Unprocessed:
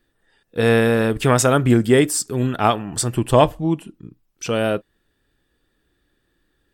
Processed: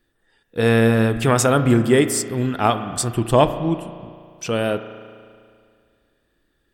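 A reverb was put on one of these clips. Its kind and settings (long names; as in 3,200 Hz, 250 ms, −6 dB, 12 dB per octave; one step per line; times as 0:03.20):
spring reverb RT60 2.2 s, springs 35 ms, chirp 60 ms, DRR 10 dB
level −1 dB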